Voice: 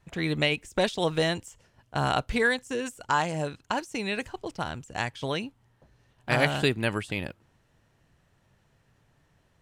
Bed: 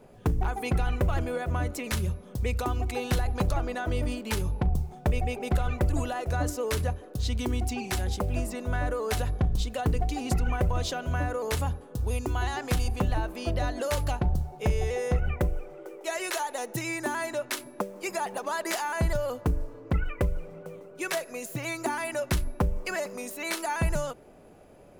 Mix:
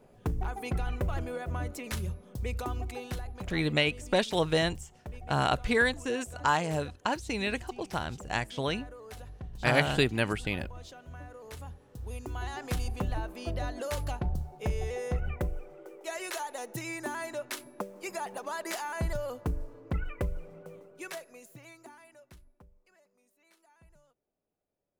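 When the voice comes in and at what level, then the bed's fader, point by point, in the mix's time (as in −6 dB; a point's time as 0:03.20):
3.35 s, −1.0 dB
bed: 0:02.77 −5.5 dB
0:03.65 −17 dB
0:11.38 −17 dB
0:12.67 −5.5 dB
0:20.78 −5.5 dB
0:22.80 −34.5 dB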